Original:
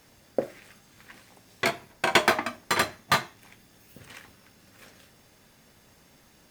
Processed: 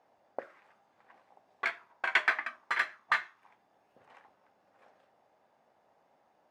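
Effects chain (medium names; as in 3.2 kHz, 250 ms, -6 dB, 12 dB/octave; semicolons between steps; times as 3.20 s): auto-wah 730–1800 Hz, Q 2.7, up, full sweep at -23 dBFS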